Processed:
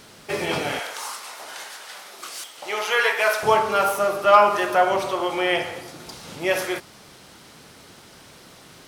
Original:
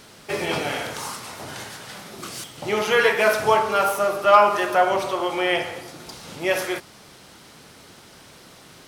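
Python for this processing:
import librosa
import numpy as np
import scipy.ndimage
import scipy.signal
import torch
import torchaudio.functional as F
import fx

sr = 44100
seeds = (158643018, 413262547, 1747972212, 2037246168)

y = fx.highpass(x, sr, hz=630.0, slope=12, at=(0.79, 3.43))
y = fx.dmg_crackle(y, sr, seeds[0], per_s=370.0, level_db=-52.0)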